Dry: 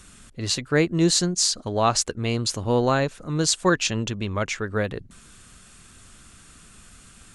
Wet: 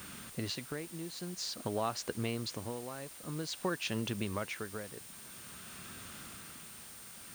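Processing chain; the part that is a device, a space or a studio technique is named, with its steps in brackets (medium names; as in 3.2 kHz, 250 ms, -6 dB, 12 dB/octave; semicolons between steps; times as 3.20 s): medium wave at night (band-pass 120–4000 Hz; compression 5:1, threshold -36 dBFS, peak gain reduction 19 dB; tremolo 0.5 Hz, depth 69%; whistle 9 kHz -57 dBFS; white noise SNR 12 dB); trim +3.5 dB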